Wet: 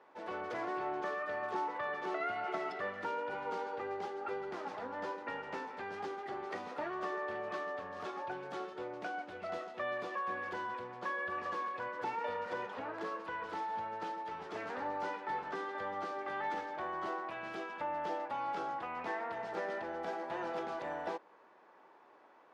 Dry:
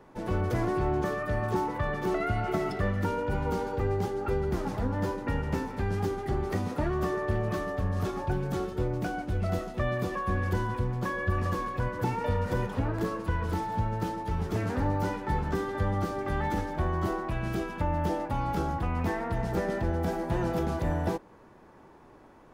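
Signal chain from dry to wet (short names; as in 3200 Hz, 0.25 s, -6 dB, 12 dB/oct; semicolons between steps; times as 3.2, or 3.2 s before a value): BPF 560–4000 Hz; gain -3.5 dB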